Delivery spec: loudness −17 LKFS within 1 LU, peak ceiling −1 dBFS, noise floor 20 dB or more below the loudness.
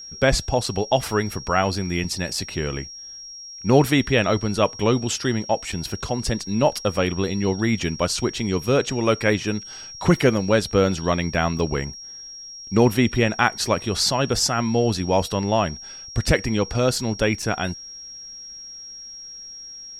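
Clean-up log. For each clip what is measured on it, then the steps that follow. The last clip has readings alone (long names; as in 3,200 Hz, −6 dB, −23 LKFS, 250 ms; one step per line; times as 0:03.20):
number of dropouts 5; longest dropout 3.5 ms; interfering tone 5,600 Hz; level of the tone −36 dBFS; integrated loudness −22.0 LKFS; sample peak −2.0 dBFS; target loudness −17.0 LKFS
→ repair the gap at 0:00.66/0:02.04/0:05.72/0:11.59/0:17.42, 3.5 ms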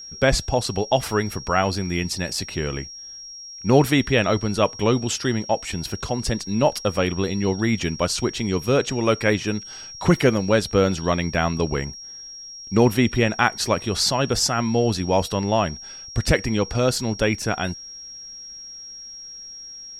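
number of dropouts 0; interfering tone 5,600 Hz; level of the tone −36 dBFS
→ notch filter 5,600 Hz, Q 30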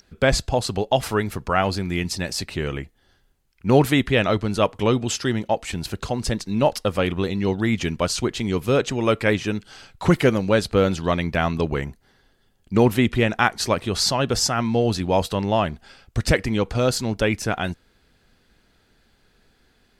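interfering tone none found; integrated loudness −22.0 LKFS; sample peak −2.5 dBFS; target loudness −17.0 LKFS
→ level +5 dB
brickwall limiter −1 dBFS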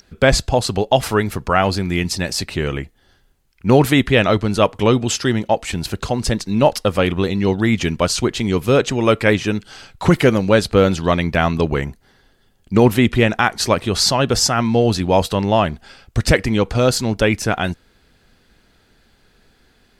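integrated loudness −17.5 LKFS; sample peak −1.0 dBFS; background noise floor −57 dBFS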